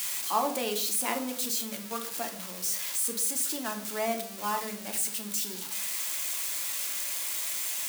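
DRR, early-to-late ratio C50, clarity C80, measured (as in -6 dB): 3.5 dB, 10.0 dB, 13.5 dB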